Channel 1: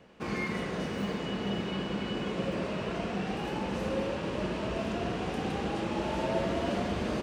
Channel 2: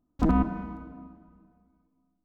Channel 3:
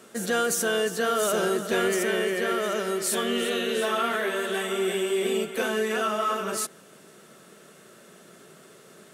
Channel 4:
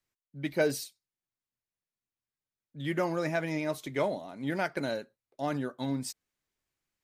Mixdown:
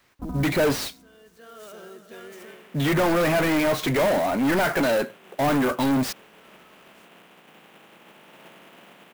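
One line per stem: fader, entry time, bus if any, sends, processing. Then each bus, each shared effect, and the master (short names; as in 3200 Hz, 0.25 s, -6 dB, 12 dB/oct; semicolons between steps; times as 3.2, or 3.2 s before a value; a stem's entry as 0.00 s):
-16.5 dB, 2.10 s, no send, spectral contrast lowered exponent 0.32; elliptic band-pass 160–3100 Hz
-10.5 dB, 0.00 s, no send, LPF 1200 Hz
-18.0 dB, 0.40 s, no send, auto duck -15 dB, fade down 0.25 s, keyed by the fourth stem
+1.5 dB, 0.00 s, no send, low shelf 150 Hz +11.5 dB; overdrive pedal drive 35 dB, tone 2100 Hz, clips at -15.5 dBFS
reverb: off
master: clock jitter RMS 0.022 ms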